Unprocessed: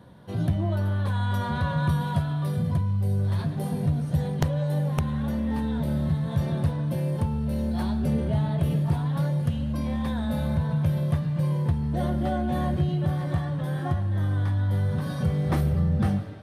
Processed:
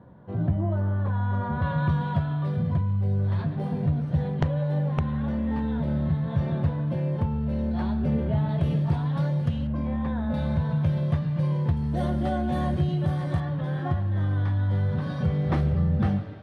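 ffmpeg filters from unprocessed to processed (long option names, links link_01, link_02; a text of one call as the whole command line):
ffmpeg -i in.wav -af "asetnsamples=nb_out_samples=441:pad=0,asendcmd='1.62 lowpass f 2800;8.49 lowpass f 4900;9.67 lowpass f 1900;10.34 lowpass f 4600;11.77 lowpass f 8600;13.4 lowpass f 3800',lowpass=1400" out.wav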